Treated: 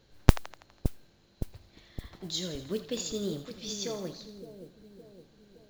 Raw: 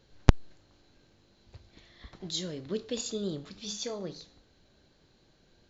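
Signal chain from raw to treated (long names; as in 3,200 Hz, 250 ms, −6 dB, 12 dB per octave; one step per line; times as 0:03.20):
echo with a time of its own for lows and highs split 650 Hz, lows 565 ms, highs 82 ms, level −10 dB
noise that follows the level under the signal 24 dB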